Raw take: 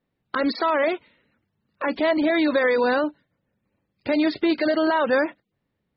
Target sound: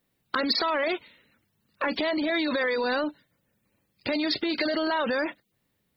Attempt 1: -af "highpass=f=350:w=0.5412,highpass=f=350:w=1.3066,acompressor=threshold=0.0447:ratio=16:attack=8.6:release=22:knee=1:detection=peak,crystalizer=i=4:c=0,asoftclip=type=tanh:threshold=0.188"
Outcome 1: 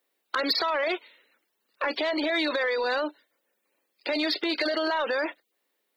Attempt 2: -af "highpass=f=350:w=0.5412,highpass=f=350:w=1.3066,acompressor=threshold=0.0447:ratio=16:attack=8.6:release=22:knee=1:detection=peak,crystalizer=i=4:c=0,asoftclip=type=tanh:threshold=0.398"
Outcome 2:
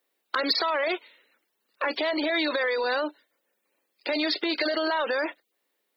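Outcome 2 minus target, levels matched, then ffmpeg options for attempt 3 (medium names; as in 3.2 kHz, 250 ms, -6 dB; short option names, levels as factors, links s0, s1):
250 Hz band -3.0 dB
-af "acompressor=threshold=0.0447:ratio=16:attack=8.6:release=22:knee=1:detection=peak,crystalizer=i=4:c=0,asoftclip=type=tanh:threshold=0.398"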